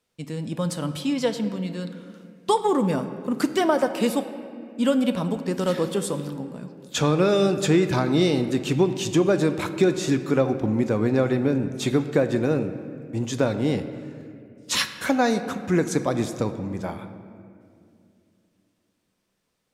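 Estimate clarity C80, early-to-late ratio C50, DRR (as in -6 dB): 11.5 dB, 10.5 dB, 8.5 dB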